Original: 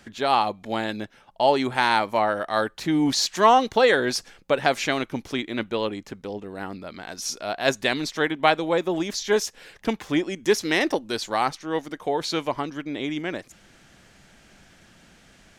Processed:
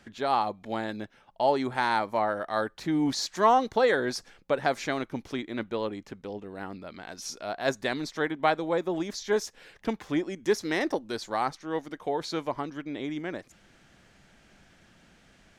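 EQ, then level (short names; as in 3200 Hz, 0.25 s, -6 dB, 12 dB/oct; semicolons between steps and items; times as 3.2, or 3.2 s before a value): high shelf 5500 Hz -6 dB; dynamic EQ 2800 Hz, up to -7 dB, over -44 dBFS, Q 2.2; -4.5 dB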